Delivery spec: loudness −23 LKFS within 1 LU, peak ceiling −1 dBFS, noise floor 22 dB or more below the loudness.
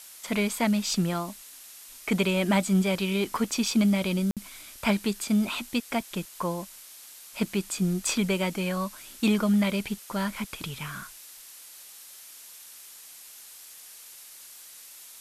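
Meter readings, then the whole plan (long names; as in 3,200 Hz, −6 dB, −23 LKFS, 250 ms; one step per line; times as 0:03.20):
number of dropouts 1; longest dropout 57 ms; background noise floor −48 dBFS; target noise floor −50 dBFS; integrated loudness −27.5 LKFS; sample peak −11.5 dBFS; target loudness −23.0 LKFS
→ repair the gap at 0:04.31, 57 ms
broadband denoise 6 dB, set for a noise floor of −48 dBFS
level +4.5 dB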